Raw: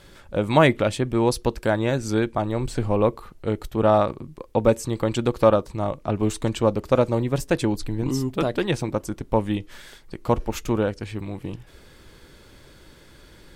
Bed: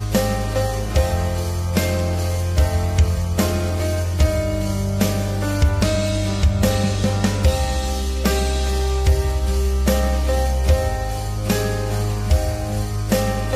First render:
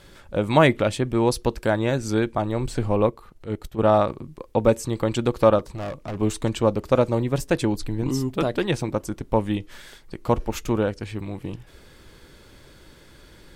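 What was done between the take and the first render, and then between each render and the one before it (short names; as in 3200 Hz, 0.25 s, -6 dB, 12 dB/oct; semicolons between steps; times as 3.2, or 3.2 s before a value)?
3.06–3.79 transient shaper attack -10 dB, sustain -6 dB; 5.59–6.16 hard clip -27.5 dBFS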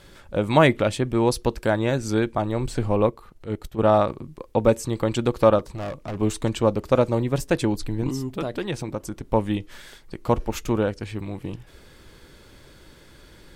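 8.1–9.3 compressor 1.5:1, threshold -31 dBFS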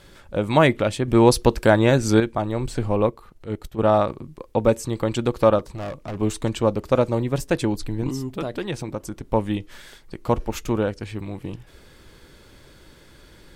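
1.08–2.2 gain +6 dB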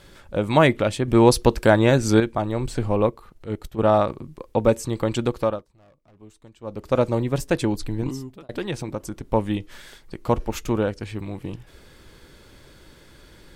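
5.24–7.03 dip -24 dB, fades 0.42 s; 8–8.49 fade out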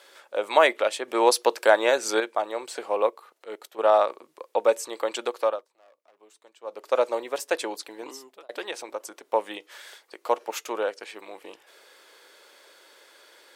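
HPF 470 Hz 24 dB/oct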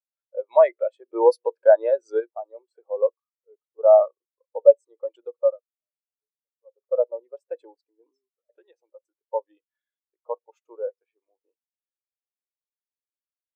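in parallel at -3 dB: limiter -13 dBFS, peak gain reduction 9 dB; on the sum: spectral expander 2.5:1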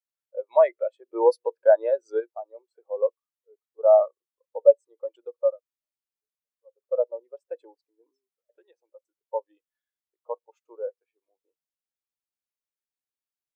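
gain -2.5 dB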